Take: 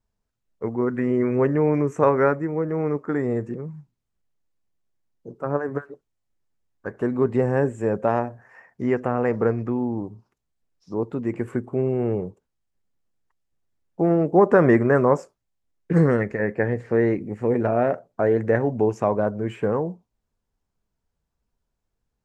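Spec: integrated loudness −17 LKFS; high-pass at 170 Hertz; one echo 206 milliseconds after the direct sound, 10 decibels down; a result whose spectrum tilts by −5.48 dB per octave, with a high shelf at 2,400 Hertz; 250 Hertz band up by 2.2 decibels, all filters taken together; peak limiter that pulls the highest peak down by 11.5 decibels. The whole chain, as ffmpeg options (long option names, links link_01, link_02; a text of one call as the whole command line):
ffmpeg -i in.wav -af "highpass=170,equalizer=frequency=250:width_type=o:gain=4,highshelf=frequency=2400:gain=-4.5,alimiter=limit=-14dB:level=0:latency=1,aecho=1:1:206:0.316,volume=7.5dB" out.wav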